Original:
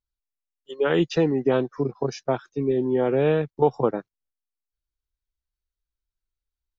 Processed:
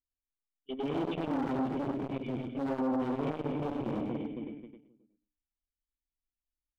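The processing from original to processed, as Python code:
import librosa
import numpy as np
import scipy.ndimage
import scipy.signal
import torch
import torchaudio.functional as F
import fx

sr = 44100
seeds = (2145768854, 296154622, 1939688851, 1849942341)

p1 = fx.vibrato(x, sr, rate_hz=0.77, depth_cents=31.0)
p2 = fx.hum_notches(p1, sr, base_hz=60, count=5)
p3 = fx.echo_feedback(p2, sr, ms=265, feedback_pct=43, wet_db=-12.5)
p4 = fx.fuzz(p3, sr, gain_db=38.0, gate_db=-44.0)
p5 = p3 + (p4 * 10.0 ** (-10.0 / 20.0))
p6 = fx.formant_cascade(p5, sr, vowel='i')
p7 = fx.low_shelf(p6, sr, hz=260.0, db=3.5)
p8 = np.clip(10.0 ** (27.5 / 20.0) * p7, -1.0, 1.0) / 10.0 ** (27.5 / 20.0)
p9 = p8 + fx.echo_multitap(p8, sr, ms=(100, 217), db=(-4.0, -19.0), dry=0)
y = fx.transformer_sat(p9, sr, knee_hz=450.0)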